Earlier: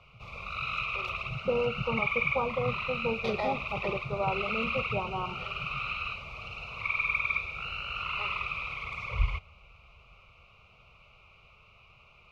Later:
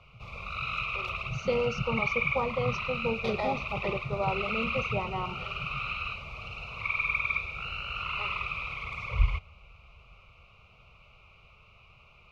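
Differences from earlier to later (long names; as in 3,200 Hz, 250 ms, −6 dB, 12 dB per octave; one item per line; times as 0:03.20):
speech: remove linear-phase brick-wall low-pass 1,700 Hz
master: add low-shelf EQ 190 Hz +3.5 dB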